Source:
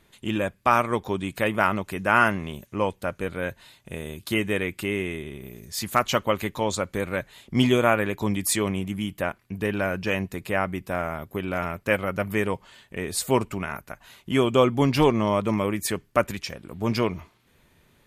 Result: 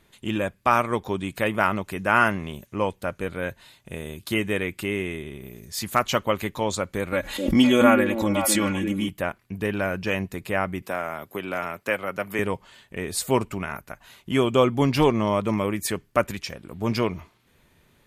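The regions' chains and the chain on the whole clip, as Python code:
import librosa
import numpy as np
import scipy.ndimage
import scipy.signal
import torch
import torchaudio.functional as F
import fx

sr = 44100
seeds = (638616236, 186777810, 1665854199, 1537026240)

y = fx.chain(x, sr, fx.comb(ms=3.6, depth=0.72),
    fx.echo_stepped(ms=257, hz=310.0, octaves=1.4, feedback_pct=70, wet_db=-3),
    fx.pre_swell(db_per_s=71.0), at=(7.12, 9.09))
y = fx.chain(y, sr, fx.highpass(hz=380.0, slope=6),
    fx.band_squash(depth_pct=40), at=(10.82, 12.39))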